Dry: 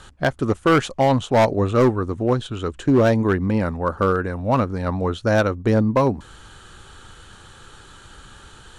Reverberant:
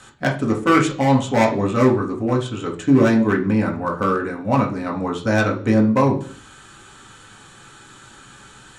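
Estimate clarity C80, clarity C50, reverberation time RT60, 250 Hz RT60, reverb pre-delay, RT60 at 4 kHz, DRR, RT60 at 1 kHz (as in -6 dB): 16.0 dB, 10.5 dB, 0.50 s, no reading, 3 ms, 0.50 s, 0.0 dB, 0.45 s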